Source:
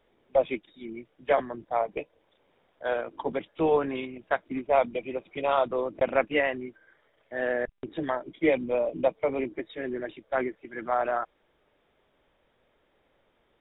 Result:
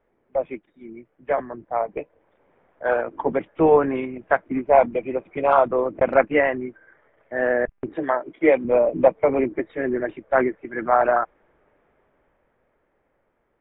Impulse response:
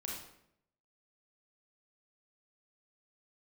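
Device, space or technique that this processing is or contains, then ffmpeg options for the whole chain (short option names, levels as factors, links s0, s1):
action camera in a waterproof case: -filter_complex "[0:a]asettb=1/sr,asplit=3[s0][s1][s2];[s0]atrim=end=7.954[s3];[s1]atrim=start=7.95:end=8.65,asetpts=PTS-STARTPTS,afade=t=in:d=0.004:c=qsin,afade=t=out:st=0.696:d=0.004:c=qsin,bass=f=250:g=-11,treble=f=4000:g=5[s4];[s2]atrim=start=8.646[s5];[s3][s4]acrossfade=d=0.004:c1=hsin:c2=qsin[s6];[s6][s5]acrossfade=d=0.004:c1=qsin:c2=hsin,lowpass=f=2100:w=0.5412,lowpass=f=2100:w=1.3066,dynaudnorm=f=200:g=21:m=5.31,volume=0.891" -ar 44100 -c:a aac -b:a 48k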